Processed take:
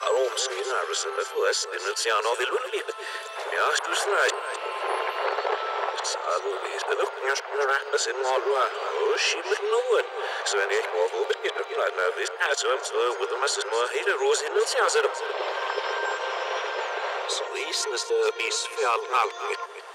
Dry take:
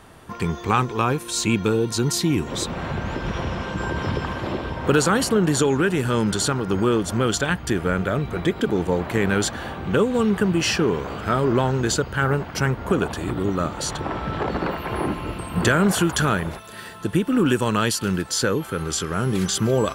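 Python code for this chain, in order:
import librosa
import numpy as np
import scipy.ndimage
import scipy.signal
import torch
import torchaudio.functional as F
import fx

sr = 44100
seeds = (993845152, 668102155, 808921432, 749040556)

y = x[::-1].copy()
y = scipy.signal.sosfilt(scipy.signal.butter(2, 7400.0, 'lowpass', fs=sr, output='sos'), y)
y = np.clip(10.0 ** (11.5 / 20.0) * y, -1.0, 1.0) / 10.0 ** (11.5 / 20.0)
y = scipy.signal.sosfilt(scipy.signal.butter(16, 400.0, 'highpass', fs=sr, output='sos'), y)
y = y + 10.0 ** (-15.0 / 20.0) * np.pad(y, (int(255 * sr / 1000.0), 0))[:len(y)]
y = fx.band_squash(y, sr, depth_pct=40)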